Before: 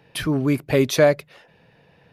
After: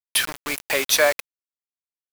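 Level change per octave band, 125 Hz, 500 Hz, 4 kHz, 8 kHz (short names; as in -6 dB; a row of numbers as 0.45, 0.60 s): -23.5, -5.0, +7.5, +9.5 dB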